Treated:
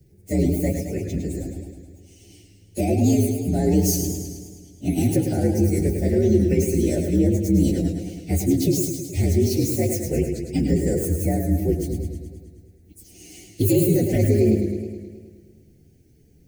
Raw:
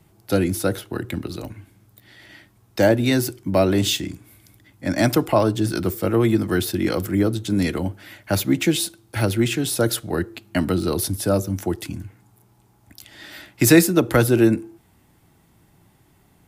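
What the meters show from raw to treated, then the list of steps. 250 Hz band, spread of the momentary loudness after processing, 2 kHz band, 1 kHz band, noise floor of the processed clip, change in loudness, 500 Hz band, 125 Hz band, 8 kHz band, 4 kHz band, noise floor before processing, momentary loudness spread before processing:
0.0 dB, 13 LU, -13.5 dB, -9.0 dB, -54 dBFS, -1.0 dB, -1.5 dB, +2.5 dB, -2.0 dB, -10.5 dB, -58 dBFS, 13 LU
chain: frequency axis rescaled in octaves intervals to 122%; peak limiter -15 dBFS, peak gain reduction 11 dB; Butterworth band-stop 1.1 kHz, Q 0.62; peaking EQ 3.3 kHz -15 dB 0.79 oct; modulated delay 106 ms, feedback 65%, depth 87 cents, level -6.5 dB; trim +5 dB

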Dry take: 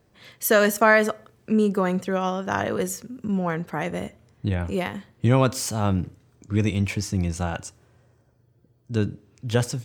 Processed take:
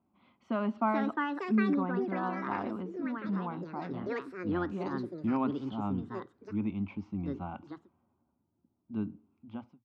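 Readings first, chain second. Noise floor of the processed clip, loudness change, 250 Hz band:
-78 dBFS, -10.0 dB, -5.5 dB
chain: fade out at the end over 0.63 s; cabinet simulation 100–2200 Hz, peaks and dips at 120 Hz +5 dB, 230 Hz +3 dB, 350 Hz -4 dB, 630 Hz -8 dB; static phaser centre 470 Hz, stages 6; ever faster or slower copies 560 ms, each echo +5 st, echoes 2; trim -6.5 dB

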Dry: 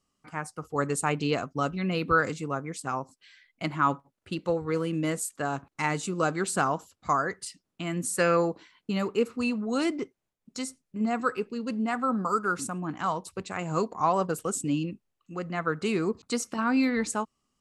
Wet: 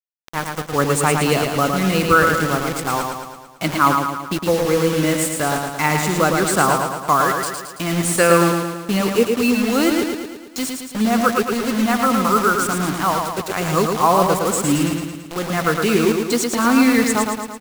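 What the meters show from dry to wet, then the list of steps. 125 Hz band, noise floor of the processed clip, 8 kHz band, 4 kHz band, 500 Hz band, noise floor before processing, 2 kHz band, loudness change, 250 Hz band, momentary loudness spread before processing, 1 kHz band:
+10.5 dB, -37 dBFS, +12.5 dB, +14.0 dB, +11.0 dB, -82 dBFS, +11.0 dB, +11.0 dB, +11.0 dB, 12 LU, +11.0 dB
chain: bit crusher 6-bit; feedback delay 111 ms, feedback 56%, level -4.5 dB; trim +9 dB

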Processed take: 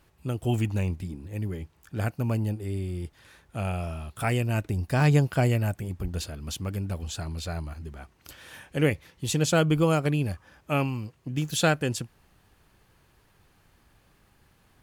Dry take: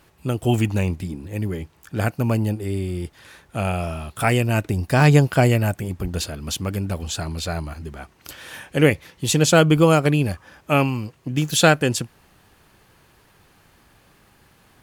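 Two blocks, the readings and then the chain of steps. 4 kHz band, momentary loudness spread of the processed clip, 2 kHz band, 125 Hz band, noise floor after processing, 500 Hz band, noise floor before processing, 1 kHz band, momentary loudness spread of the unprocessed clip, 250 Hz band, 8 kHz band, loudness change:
-8.5 dB, 16 LU, -8.5 dB, -5.5 dB, -63 dBFS, -8.0 dB, -57 dBFS, -8.5 dB, 18 LU, -7.0 dB, -8.5 dB, -7.0 dB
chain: bass shelf 91 Hz +8.5 dB; trim -8.5 dB

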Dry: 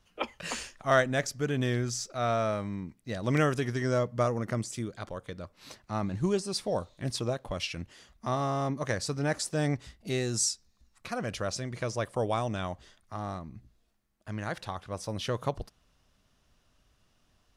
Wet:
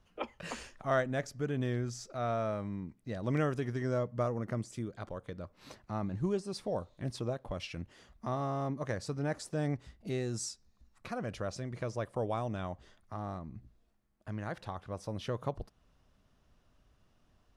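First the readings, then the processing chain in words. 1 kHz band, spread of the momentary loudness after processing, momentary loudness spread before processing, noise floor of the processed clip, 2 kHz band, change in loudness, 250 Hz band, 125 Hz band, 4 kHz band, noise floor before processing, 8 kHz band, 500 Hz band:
-5.5 dB, 12 LU, 14 LU, -70 dBFS, -8.0 dB, -5.5 dB, -4.0 dB, -4.0 dB, -10.5 dB, -70 dBFS, -11.5 dB, -4.5 dB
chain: treble shelf 2 kHz -9.5 dB; in parallel at +1 dB: compression, threshold -43 dBFS, peak gain reduction 21 dB; on the sum: trim -5.5 dB

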